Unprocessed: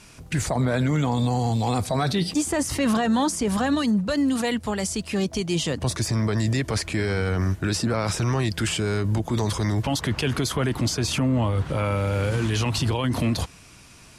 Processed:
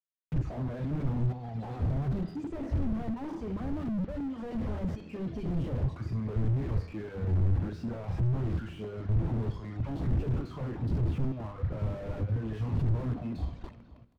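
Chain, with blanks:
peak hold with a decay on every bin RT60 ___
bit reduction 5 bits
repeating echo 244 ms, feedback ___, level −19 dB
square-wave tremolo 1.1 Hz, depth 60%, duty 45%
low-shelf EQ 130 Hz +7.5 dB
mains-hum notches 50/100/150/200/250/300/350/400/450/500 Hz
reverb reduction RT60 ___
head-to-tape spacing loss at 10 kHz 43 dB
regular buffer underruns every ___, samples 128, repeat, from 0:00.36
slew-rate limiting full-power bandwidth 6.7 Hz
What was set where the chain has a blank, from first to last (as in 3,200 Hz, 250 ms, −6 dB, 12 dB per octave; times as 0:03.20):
1.07 s, 57%, 1.4 s, 0.16 s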